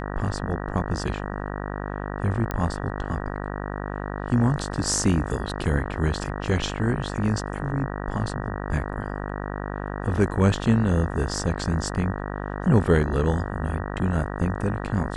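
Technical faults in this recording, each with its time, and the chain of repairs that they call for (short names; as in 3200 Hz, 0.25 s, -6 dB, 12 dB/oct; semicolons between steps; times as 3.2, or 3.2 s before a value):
buzz 50 Hz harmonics 38 -31 dBFS
2.51 pop -14 dBFS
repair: de-click; de-hum 50 Hz, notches 38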